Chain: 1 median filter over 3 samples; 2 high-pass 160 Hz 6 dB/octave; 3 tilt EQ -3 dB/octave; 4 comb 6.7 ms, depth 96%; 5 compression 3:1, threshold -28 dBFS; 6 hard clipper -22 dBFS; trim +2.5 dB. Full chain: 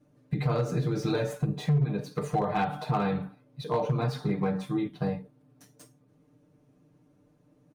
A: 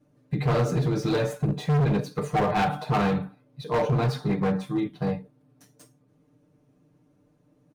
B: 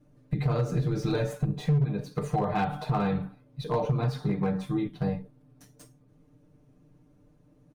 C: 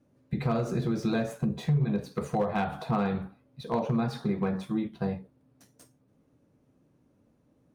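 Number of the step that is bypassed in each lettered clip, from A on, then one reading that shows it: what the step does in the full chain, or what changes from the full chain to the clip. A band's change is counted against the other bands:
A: 5, mean gain reduction 5.0 dB; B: 2, 125 Hz band +2.0 dB; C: 4, 250 Hz band +4.0 dB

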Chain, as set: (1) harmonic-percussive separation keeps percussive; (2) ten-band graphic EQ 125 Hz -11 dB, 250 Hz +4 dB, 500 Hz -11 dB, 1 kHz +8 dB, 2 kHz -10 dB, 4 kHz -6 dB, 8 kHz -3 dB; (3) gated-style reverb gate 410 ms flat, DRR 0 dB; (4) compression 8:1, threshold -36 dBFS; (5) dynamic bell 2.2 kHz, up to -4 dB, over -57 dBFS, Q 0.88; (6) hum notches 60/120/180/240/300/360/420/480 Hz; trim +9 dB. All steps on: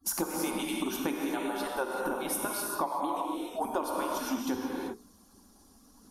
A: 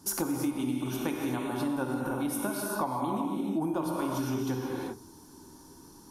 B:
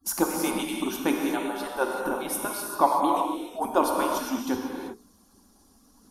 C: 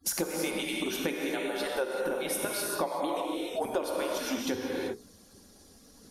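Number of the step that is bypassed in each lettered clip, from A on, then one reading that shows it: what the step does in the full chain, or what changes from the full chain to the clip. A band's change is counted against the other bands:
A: 1, 125 Hz band +15.0 dB; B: 4, mean gain reduction 4.0 dB; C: 2, crest factor change +1.5 dB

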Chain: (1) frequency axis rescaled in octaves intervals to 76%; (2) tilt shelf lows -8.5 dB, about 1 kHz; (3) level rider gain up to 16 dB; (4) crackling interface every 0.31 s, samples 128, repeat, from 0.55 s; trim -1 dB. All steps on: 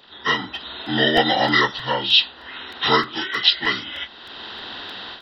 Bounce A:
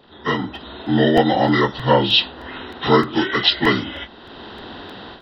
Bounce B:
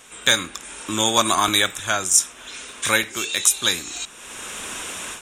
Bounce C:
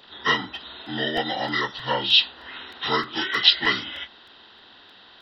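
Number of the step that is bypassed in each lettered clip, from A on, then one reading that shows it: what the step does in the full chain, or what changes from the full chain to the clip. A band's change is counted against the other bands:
2, crest factor change -3.0 dB; 1, momentary loudness spread change -2 LU; 3, crest factor change +4.0 dB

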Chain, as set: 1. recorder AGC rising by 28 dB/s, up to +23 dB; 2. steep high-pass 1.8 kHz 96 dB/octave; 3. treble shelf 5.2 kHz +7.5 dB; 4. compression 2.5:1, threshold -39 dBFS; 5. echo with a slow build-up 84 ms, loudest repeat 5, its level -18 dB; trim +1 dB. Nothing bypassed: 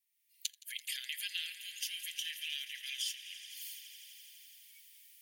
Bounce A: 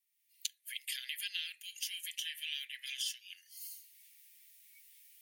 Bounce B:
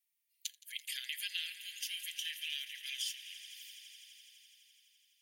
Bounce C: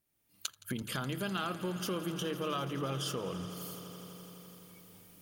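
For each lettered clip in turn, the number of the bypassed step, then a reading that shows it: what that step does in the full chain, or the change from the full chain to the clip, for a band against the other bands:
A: 5, echo-to-direct -8.5 dB to none; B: 1, momentary loudness spread change -1 LU; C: 2, crest factor change -3.0 dB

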